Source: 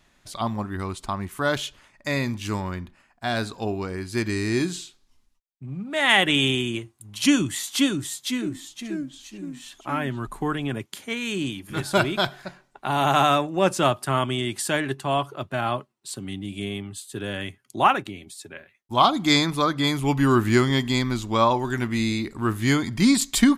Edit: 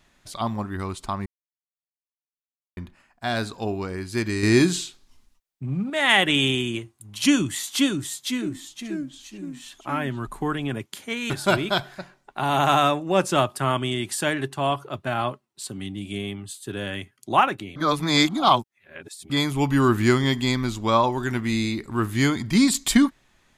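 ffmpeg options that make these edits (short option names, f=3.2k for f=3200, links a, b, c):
-filter_complex "[0:a]asplit=8[a][b][c][d][e][f][g][h];[a]atrim=end=1.26,asetpts=PTS-STARTPTS,afade=t=out:st=1.256:d=0.004:c=hsin[i];[b]atrim=start=1.26:end=2.77,asetpts=PTS-STARTPTS,volume=0[j];[c]atrim=start=2.77:end=4.432,asetpts=PTS-STARTPTS,afade=t=in:d=0.004:c=hsin[k];[d]atrim=start=4.428:end=5.902,asetpts=PTS-STARTPTS,volume=6.5dB[l];[e]atrim=start=5.898:end=11.302[m];[f]atrim=start=11.768:end=18.232[n];[g]atrim=start=18.228:end=19.772,asetpts=PTS-STARTPTS,areverse[o];[h]atrim=start=19.768[p];[i][j][k]concat=n=3:v=0:a=1[q];[q][l]acrossfade=d=0.004:c1=hsin:c2=hsin[r];[r][m]acrossfade=d=0.004:c1=hsin:c2=hsin[s];[s][n]acrossfade=d=0.004:c1=hsin:c2=hsin[t];[t][o]acrossfade=d=0.004:c1=hsin:c2=hsin[u];[u][p]acrossfade=d=0.004:c1=hsin:c2=hsin"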